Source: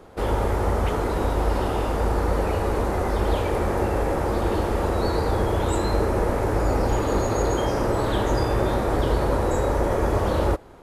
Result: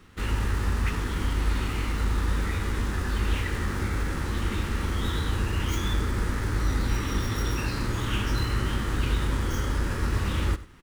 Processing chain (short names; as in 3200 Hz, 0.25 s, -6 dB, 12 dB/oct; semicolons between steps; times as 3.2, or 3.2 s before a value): median filter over 5 samples; EQ curve 250 Hz 0 dB, 650 Hz -19 dB, 2000 Hz +6 dB; echo 95 ms -17 dB; formant shift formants -3 st; gain -2 dB